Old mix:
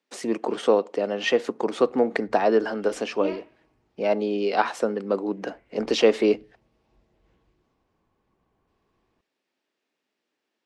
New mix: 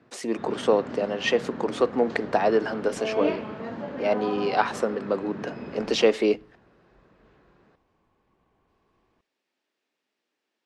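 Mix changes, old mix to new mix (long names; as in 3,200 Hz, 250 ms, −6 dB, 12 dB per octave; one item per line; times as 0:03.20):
first sound: unmuted
second sound +4.5 dB
master: add low-shelf EQ 470 Hz −3 dB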